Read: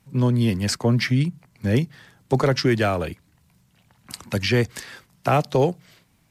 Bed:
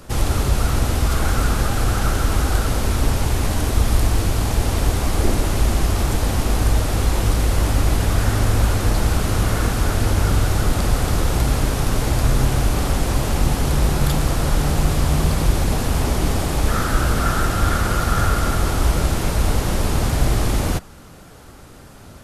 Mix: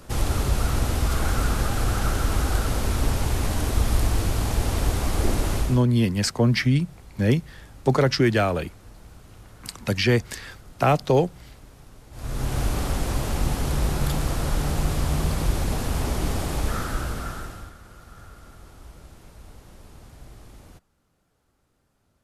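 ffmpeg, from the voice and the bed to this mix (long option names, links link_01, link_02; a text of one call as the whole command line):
ffmpeg -i stem1.wav -i stem2.wav -filter_complex "[0:a]adelay=5550,volume=0dB[link_01];[1:a]volume=18dB,afade=type=out:start_time=5.55:duration=0.28:silence=0.0630957,afade=type=in:start_time=12.11:duration=0.51:silence=0.0749894,afade=type=out:start_time=16.55:duration=1.18:silence=0.0841395[link_02];[link_01][link_02]amix=inputs=2:normalize=0" out.wav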